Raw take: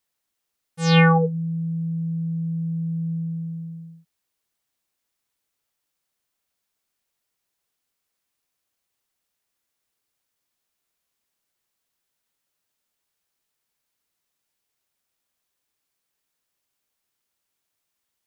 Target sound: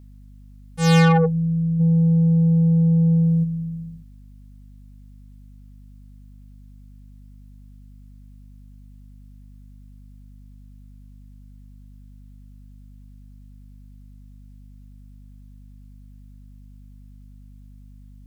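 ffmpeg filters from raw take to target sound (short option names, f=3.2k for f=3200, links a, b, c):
-filter_complex "[0:a]asplit=3[a][b][c];[a]afade=t=out:st=1.79:d=0.02[d];[b]acontrast=65,afade=t=in:st=1.79:d=0.02,afade=t=out:st=3.43:d=0.02[e];[c]afade=t=in:st=3.43:d=0.02[f];[d][e][f]amix=inputs=3:normalize=0,asoftclip=type=tanh:threshold=-17dB,aeval=exprs='val(0)+0.00355*(sin(2*PI*50*n/s)+sin(2*PI*2*50*n/s)/2+sin(2*PI*3*50*n/s)/3+sin(2*PI*4*50*n/s)/4+sin(2*PI*5*50*n/s)/5)':c=same,volume=5.5dB"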